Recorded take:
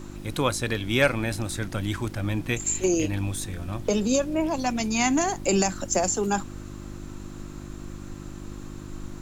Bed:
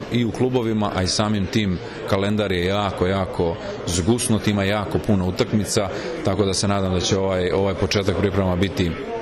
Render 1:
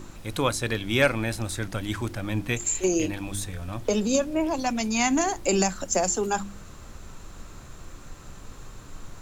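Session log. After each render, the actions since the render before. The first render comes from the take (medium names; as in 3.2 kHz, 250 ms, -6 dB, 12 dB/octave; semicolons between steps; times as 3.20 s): de-hum 50 Hz, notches 7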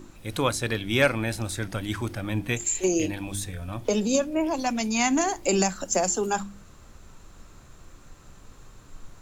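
noise print and reduce 6 dB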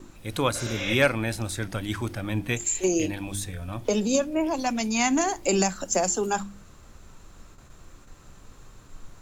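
0.57–0.92 s: spectral replace 450–7500 Hz both; gate with hold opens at -39 dBFS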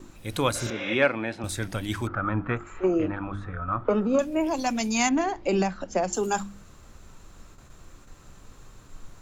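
0.70–1.44 s: band-pass 210–2700 Hz; 2.07–4.19 s: resonant low-pass 1.3 kHz, resonance Q 12; 5.09–6.13 s: distance through air 230 m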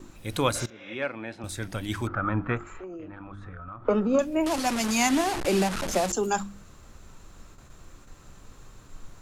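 0.66–2.11 s: fade in, from -18.5 dB; 2.68–3.87 s: compression 8:1, threshold -37 dBFS; 4.46–6.12 s: one-bit delta coder 64 kbps, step -24.5 dBFS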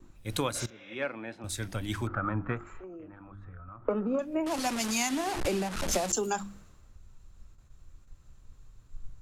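compression 12:1, threshold -27 dBFS, peak gain reduction 10 dB; three bands expanded up and down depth 70%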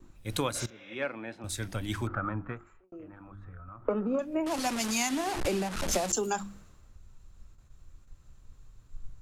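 2.12–2.92 s: fade out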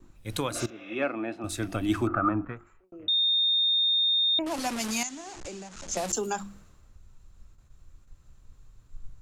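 0.51–2.45 s: small resonant body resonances 320/670/1200/2600 Hz, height 12 dB, ringing for 25 ms; 3.08–4.39 s: bleep 3.66 kHz -21 dBFS; 5.03–5.97 s: four-pole ladder low-pass 7.5 kHz, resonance 65%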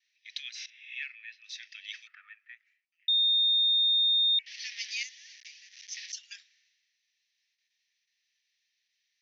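Chebyshev band-pass 1.8–6 kHz, order 5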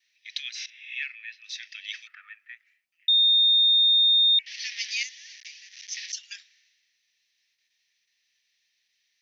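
trim +5.5 dB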